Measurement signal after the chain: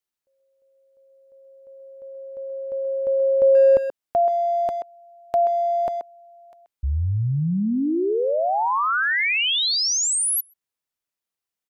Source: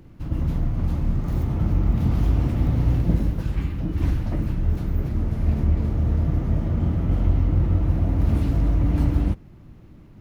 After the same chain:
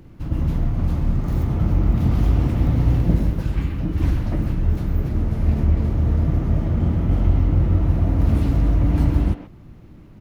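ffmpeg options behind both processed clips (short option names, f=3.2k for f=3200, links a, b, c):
-filter_complex "[0:a]asplit=2[a][b];[b]adelay=130,highpass=300,lowpass=3.4k,asoftclip=type=hard:threshold=-17.5dB,volume=-8dB[c];[a][c]amix=inputs=2:normalize=0,volume=2.5dB"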